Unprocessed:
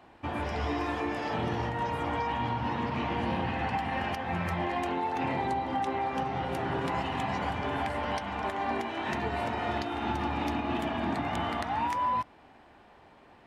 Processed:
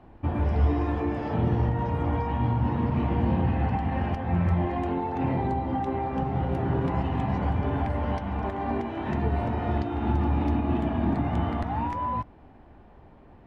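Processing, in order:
spectral tilt −4 dB per octave
level −1.5 dB

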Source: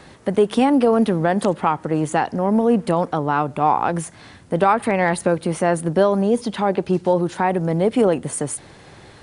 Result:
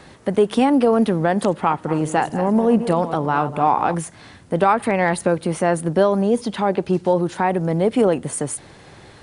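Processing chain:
0:01.57–0:03.95: feedback delay that plays each chunk backwards 121 ms, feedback 48%, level −11 dB

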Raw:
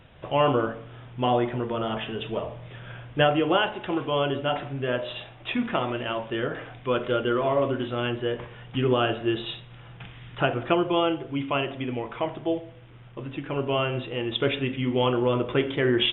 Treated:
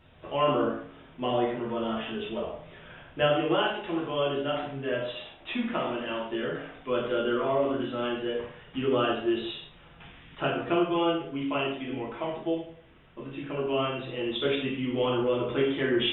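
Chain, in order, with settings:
reverb whose tail is shaped and stops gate 190 ms falling, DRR −4 dB
level −8.5 dB

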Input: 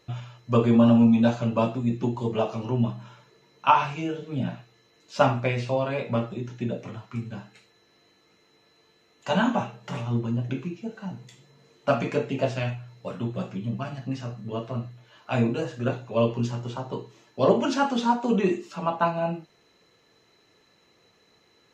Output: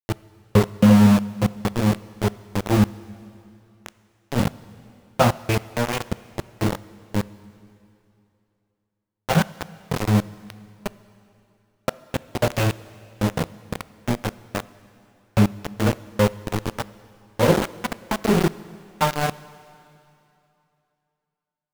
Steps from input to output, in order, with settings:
low-pass that shuts in the quiet parts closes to 780 Hz, open at −21 dBFS
bass and treble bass +8 dB, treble −13 dB
mains-hum notches 50/100/150/200/250/300/350/400/450 Hz
in parallel at +1.5 dB: downward compressor 10 to 1, threshold −27 dBFS, peak gain reduction 18 dB
on the sum: gate pattern "xxxx..x.." 164 BPM −60 dB
phase-vocoder pitch shift with formants kept −2 semitones
centre clipping without the shift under −17 dBFS
on a send at −17.5 dB: convolution reverb RT60 2.8 s, pre-delay 8 ms

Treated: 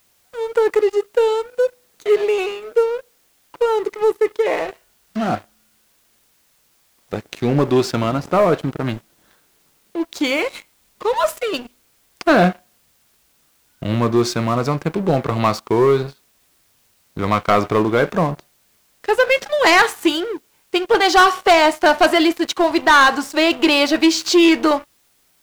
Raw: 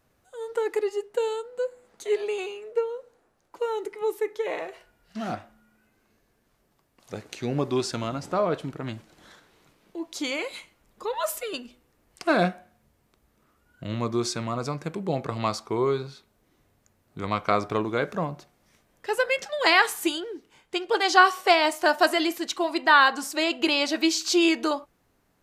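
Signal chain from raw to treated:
high-shelf EQ 5,600 Hz −12 dB
leveller curve on the samples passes 3
bit-depth reduction 10 bits, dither triangular

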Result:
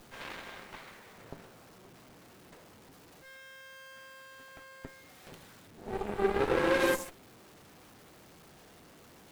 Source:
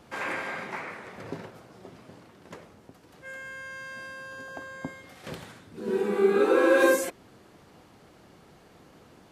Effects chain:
converter with a step at zero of −26 dBFS
harmonic generator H 6 −15 dB, 7 −18 dB, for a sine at −8 dBFS
level −8.5 dB

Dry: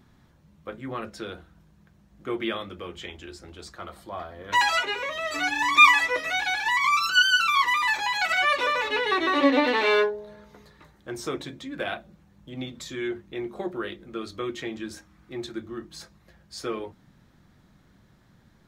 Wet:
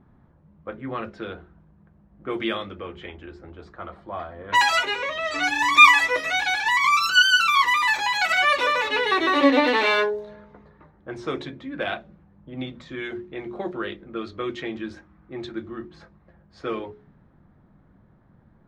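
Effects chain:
low-pass that shuts in the quiet parts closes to 1,100 Hz, open at −22.5 dBFS
mains-hum notches 60/120/180/240/300/360/420 Hz
level +3 dB

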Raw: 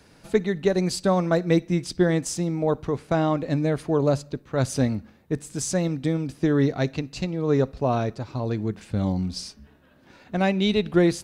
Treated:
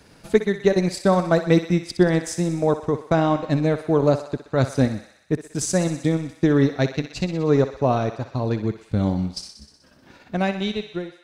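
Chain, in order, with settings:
fade-out on the ending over 1.17 s
transient designer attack +1 dB, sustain −12 dB
feedback echo with a high-pass in the loop 62 ms, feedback 71%, high-pass 570 Hz, level −10 dB
level +3 dB

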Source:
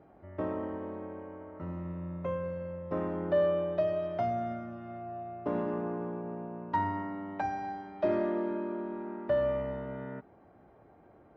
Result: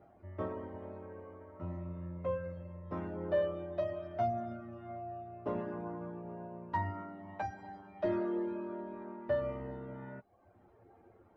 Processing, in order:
reverb reduction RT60 0.68 s
multi-voice chorus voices 6, 0.19 Hz, delay 10 ms, depth 1.7 ms

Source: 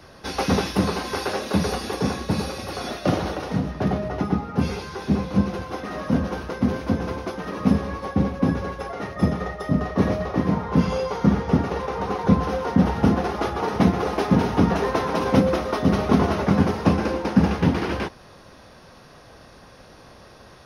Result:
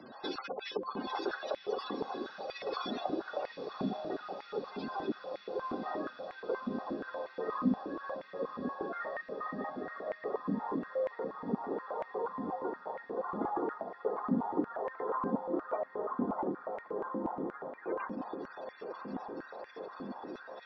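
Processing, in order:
stylus tracing distortion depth 0.058 ms
low-pass filter 11,000 Hz 12 dB per octave
gate on every frequency bin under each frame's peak −15 dB strong
parametric band 3,500 Hz +9.5 dB 0.6 octaves
downward compressor 3 to 1, threshold −34 dBFS, peak gain reduction 16.5 dB
feedback delay with all-pass diffusion 977 ms, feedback 78%, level −9.5 dB
high-pass on a step sequencer 8.4 Hz 240–2,000 Hz
level −5.5 dB

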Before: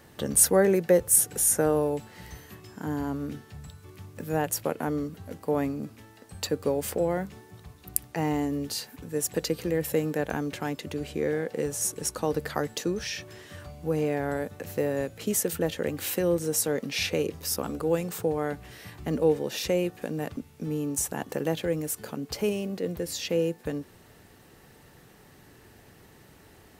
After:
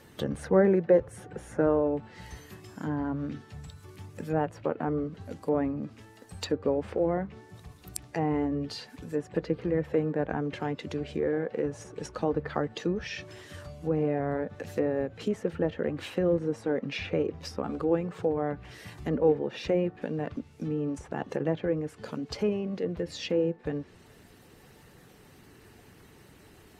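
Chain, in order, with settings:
spectral magnitudes quantised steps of 15 dB
treble cut that deepens with the level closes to 1,700 Hz, closed at −26 dBFS

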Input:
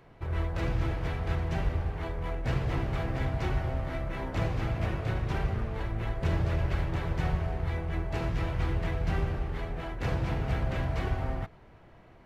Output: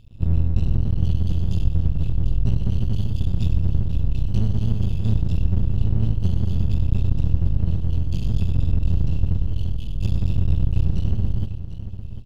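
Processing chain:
rippled gain that drifts along the octave scale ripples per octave 2, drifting +0.59 Hz, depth 11 dB
low shelf with overshoot 230 Hz +11.5 dB, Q 3
brick-wall band-stop 120–2,600 Hz
downward compressor, threshold −20 dBFS, peak gain reduction 13.5 dB
half-wave rectification
multi-tap delay 100/746 ms −13.5/−11 dB
level +7 dB

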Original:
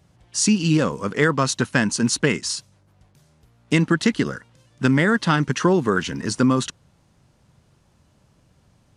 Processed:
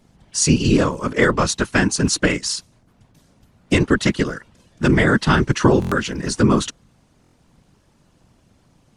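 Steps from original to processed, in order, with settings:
random phases in short frames
buffer that repeats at 0:05.80/0:07.22, samples 1,024, times 4
level +2.5 dB

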